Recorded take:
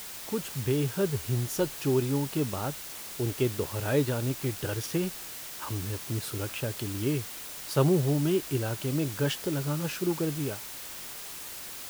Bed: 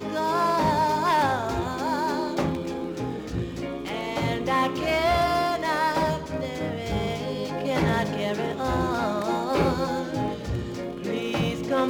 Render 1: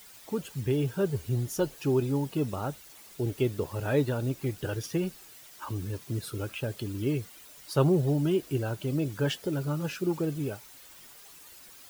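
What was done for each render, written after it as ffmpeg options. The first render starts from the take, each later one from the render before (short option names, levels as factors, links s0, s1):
-af "afftdn=nr=12:nf=-41"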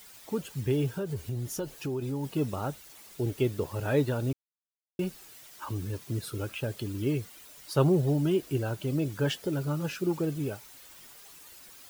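-filter_complex "[0:a]asplit=3[s0][s1][s2];[s0]afade=t=out:st=0.95:d=0.02[s3];[s1]acompressor=threshold=0.0355:ratio=6:attack=3.2:release=140:knee=1:detection=peak,afade=t=in:st=0.95:d=0.02,afade=t=out:st=2.23:d=0.02[s4];[s2]afade=t=in:st=2.23:d=0.02[s5];[s3][s4][s5]amix=inputs=3:normalize=0,asplit=3[s6][s7][s8];[s6]atrim=end=4.33,asetpts=PTS-STARTPTS,afade=t=out:st=4.326:d=0.004:c=hsin[s9];[s7]atrim=start=4.33:end=4.99,asetpts=PTS-STARTPTS,volume=0[s10];[s8]atrim=start=4.99,asetpts=PTS-STARTPTS,afade=t=in:d=0.004:c=hsin[s11];[s9][s10][s11]concat=n=3:v=0:a=1"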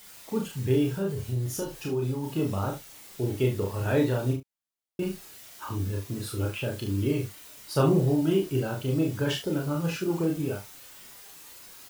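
-filter_complex "[0:a]asplit=2[s0][s1];[s1]adelay=31,volume=0.708[s2];[s0][s2]amix=inputs=2:normalize=0,aecho=1:1:41|71:0.531|0.15"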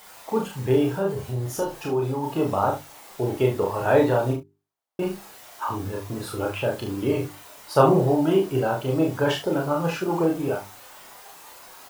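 -af "equalizer=f=820:w=0.73:g=13.5,bandreject=f=50:t=h:w=6,bandreject=f=100:t=h:w=6,bandreject=f=150:t=h:w=6,bandreject=f=200:t=h:w=6,bandreject=f=250:t=h:w=6,bandreject=f=300:t=h:w=6,bandreject=f=350:t=h:w=6,bandreject=f=400:t=h:w=6"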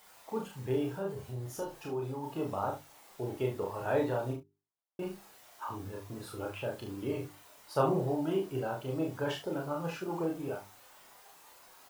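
-af "volume=0.266"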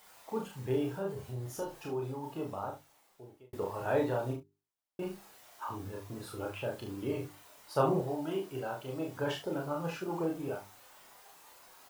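-filter_complex "[0:a]asettb=1/sr,asplit=3[s0][s1][s2];[s0]atrim=end=8.014[s3];[s1]atrim=start=8.01:end=9.17,asetpts=PTS-STARTPTS,afade=t=in:d=0.004:c=qsin,afade=t=out:st=1.156:d=0.004:c=qsin,lowshelf=f=480:g=-6[s4];[s2]atrim=start=9.166[s5];[s3][s4]acrossfade=d=0.004:c1=hsin:c2=qsin[s6];[s6][s5]acrossfade=d=0.004:c1=qsin:c2=hsin,asplit=2[s7][s8];[s7]atrim=end=3.53,asetpts=PTS-STARTPTS,afade=t=out:st=1.96:d=1.57[s9];[s8]atrim=start=3.53,asetpts=PTS-STARTPTS,afade=t=in:d=0.004:c=hsin[s10];[s9][s10]concat=n=2:v=0:a=1"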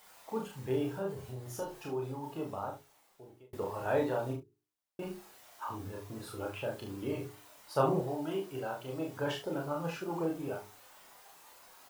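-af "bandreject=f=60:t=h:w=6,bandreject=f=120:t=h:w=6,bandreject=f=180:t=h:w=6,bandreject=f=240:t=h:w=6,bandreject=f=300:t=h:w=6,bandreject=f=360:t=h:w=6,bandreject=f=420:t=h:w=6"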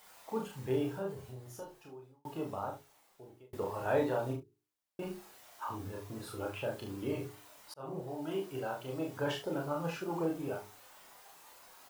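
-filter_complex "[0:a]asplit=3[s0][s1][s2];[s0]atrim=end=2.25,asetpts=PTS-STARTPTS,afade=t=out:st=0.78:d=1.47[s3];[s1]atrim=start=2.25:end=7.74,asetpts=PTS-STARTPTS,afade=t=in:d=0.004:c=hsin,afade=t=out:st=5.486:d=0.004:c=hsin[s4];[s2]atrim=start=7.74,asetpts=PTS-STARTPTS,afade=t=in:d=0.68[s5];[s3][s4][s5]concat=n=3:v=0:a=1"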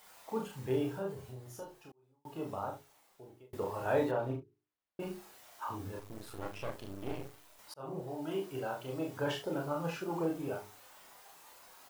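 -filter_complex "[0:a]asettb=1/sr,asplit=3[s0][s1][s2];[s0]atrim=end=4.114[s3];[s1]atrim=start=4.11:end=5,asetpts=PTS-STARTPTS,afade=t=in:d=0.004:c=qsin,afade=t=out:st=0.886:d=0.004:c=qsin,bass=f=250:g=0,treble=f=4000:g=-13[s4];[s2]atrim=start=4.996[s5];[s3][s4]acrossfade=d=0.004:c1=hsin:c2=qsin[s6];[s6][s5]acrossfade=d=0.004:c1=qsin:c2=hsin,asettb=1/sr,asplit=3[s7][s8][s9];[s7]atrim=end=5.994[s10];[s8]atrim=start=5.99:end=7.59,asetpts=PTS-STARTPTS,afade=t=in:d=0.004:c=qsin,afade=t=out:st=1.596:d=0.004:c=qsin,aeval=exprs='max(val(0),0)':c=same[s11];[s9]atrim=start=7.586[s12];[s10][s11]acrossfade=d=0.004:c1=hsin:c2=qsin[s13];[s13][s12]acrossfade=d=0.004:c1=qsin:c2=hsin,asplit=2[s14][s15];[s14]atrim=end=1.92,asetpts=PTS-STARTPTS,afade=t=out:st=1.916:d=0.004:c=hsin[s16];[s15]atrim=start=1.92,asetpts=PTS-STARTPTS,afade=t=in:d=0.59[s17];[s16][s17]concat=n=2:v=0:a=1"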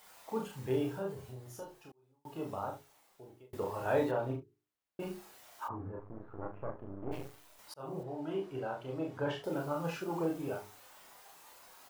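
-filter_complex "[0:a]asplit=3[s0][s1][s2];[s0]afade=t=out:st=5.67:d=0.02[s3];[s1]lowpass=f=1400:w=0.5412,lowpass=f=1400:w=1.3066,afade=t=in:st=5.67:d=0.02,afade=t=out:st=7.11:d=0.02[s4];[s2]afade=t=in:st=7.11:d=0.02[s5];[s3][s4][s5]amix=inputs=3:normalize=0,asettb=1/sr,asplit=3[s6][s7][s8];[s6]atrim=end=8.034[s9];[s7]atrim=start=8.03:end=9.44,asetpts=PTS-STARTPTS,afade=t=in:d=0.004:c=qsin,afade=t=out:st=1.406:d=0.004:c=qsin,aemphasis=mode=reproduction:type=75kf[s10];[s8]atrim=start=9.436[s11];[s9][s10]acrossfade=d=0.004:c1=hsin:c2=qsin[s12];[s12][s11]acrossfade=d=0.004:c1=qsin:c2=hsin"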